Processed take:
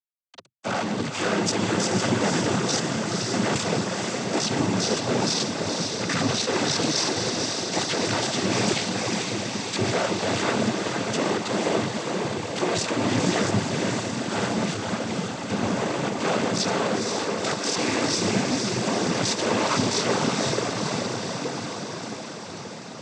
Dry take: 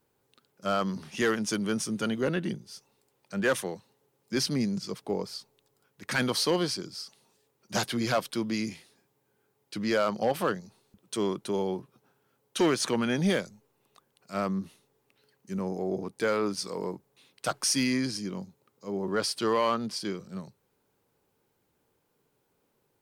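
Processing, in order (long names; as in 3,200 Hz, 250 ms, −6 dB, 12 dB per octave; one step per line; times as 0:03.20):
sub-harmonics by changed cycles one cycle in 2, muted
reversed playback
downward compressor 6 to 1, threshold −43 dBFS, peak gain reduction 20.5 dB
reversed playback
fuzz pedal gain 62 dB, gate −58 dBFS
feedback delay with all-pass diffusion 499 ms, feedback 72%, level −3.5 dB
cochlear-implant simulation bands 16
level −7 dB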